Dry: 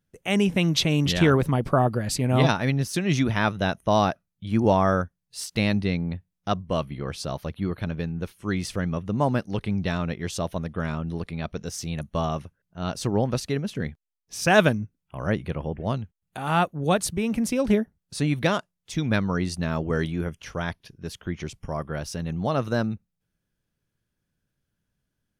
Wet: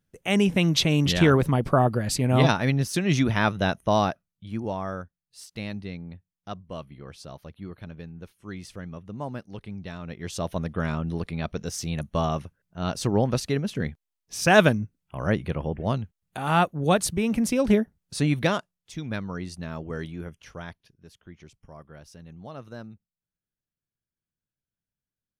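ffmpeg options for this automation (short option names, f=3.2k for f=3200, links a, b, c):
-af "volume=12.5dB,afade=t=out:st=3.75:d=0.91:silence=0.266073,afade=t=in:st=10.01:d=0.61:silence=0.251189,afade=t=out:st=18.31:d=0.64:silence=0.354813,afade=t=out:st=20.5:d=0.56:silence=0.421697"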